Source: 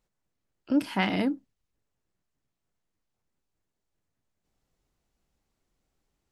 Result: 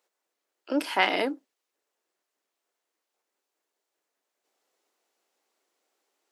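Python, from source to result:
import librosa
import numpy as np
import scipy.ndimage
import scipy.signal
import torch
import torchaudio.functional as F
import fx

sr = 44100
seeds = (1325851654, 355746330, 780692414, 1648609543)

y = scipy.signal.sosfilt(scipy.signal.butter(4, 370.0, 'highpass', fs=sr, output='sos'), x)
y = F.gain(torch.from_numpy(y), 5.5).numpy()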